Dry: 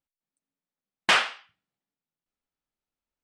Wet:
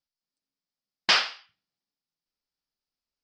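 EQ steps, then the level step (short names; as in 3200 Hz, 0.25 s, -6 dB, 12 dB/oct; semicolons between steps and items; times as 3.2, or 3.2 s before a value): synth low-pass 5000 Hz, resonance Q 5.5; -4.0 dB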